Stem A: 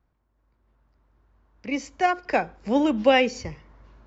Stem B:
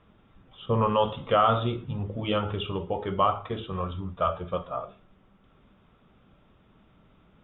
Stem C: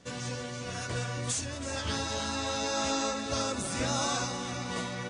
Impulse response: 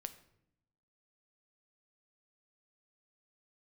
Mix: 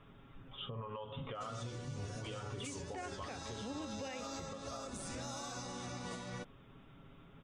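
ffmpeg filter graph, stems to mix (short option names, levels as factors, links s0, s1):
-filter_complex "[0:a]adelay=950,volume=0.891[s0];[1:a]aecho=1:1:7.3:0.58,acompressor=threshold=0.0501:ratio=8,volume=1.06[s1];[2:a]equalizer=f=2400:t=o:w=1.7:g=-3.5,asoftclip=type=tanh:threshold=0.112,adelay=1350,volume=0.501[s2];[s0][s1]amix=inputs=2:normalize=0,equalizer=f=680:t=o:w=0.77:g=-2.5,acompressor=threshold=0.0141:ratio=3,volume=1[s3];[s2][s3]amix=inputs=2:normalize=0,alimiter=level_in=3.35:limit=0.0631:level=0:latency=1:release=246,volume=0.299"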